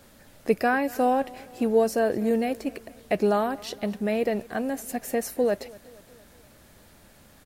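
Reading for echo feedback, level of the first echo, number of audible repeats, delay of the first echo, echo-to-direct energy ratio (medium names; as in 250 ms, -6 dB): 55%, -22.0 dB, 3, 234 ms, -20.5 dB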